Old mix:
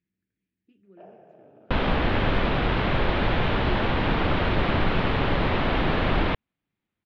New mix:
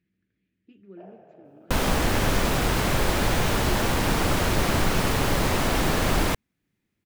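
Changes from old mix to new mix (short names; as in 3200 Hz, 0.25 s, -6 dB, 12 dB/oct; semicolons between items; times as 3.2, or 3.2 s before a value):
speech +8.0 dB; second sound: remove steep low-pass 3700 Hz 36 dB/oct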